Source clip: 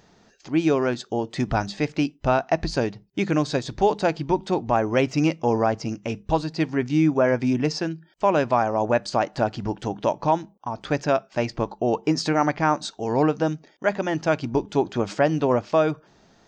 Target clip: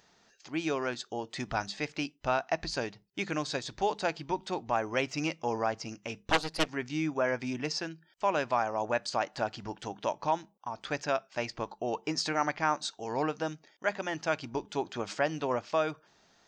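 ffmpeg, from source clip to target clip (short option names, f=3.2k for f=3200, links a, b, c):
-filter_complex "[0:a]asettb=1/sr,asplit=3[a][b][c];[a]atrim=end=6.234[d];[b]atrim=start=6.23:end=6.69,asetpts=PTS-STARTPTS,afade=t=in:d=0.004:c=qsin,afade=t=out:st=0.456:d=0.004:c=qsin,aeval=exprs='0.376*(cos(1*acos(clip(val(0)/0.376,-1,1)))-cos(1*PI/2))+0.168*(cos(6*acos(clip(val(0)/0.376,-1,1)))-cos(6*PI/2))':c=same[e];[c]atrim=start=6.686[f];[d][e]acrossfade=d=0.004:c1=hsin:c2=qsin[g];[g][f]acrossfade=d=0.004:c1=qsin:c2=hsin,tiltshelf=f=650:g=-6,volume=-9dB"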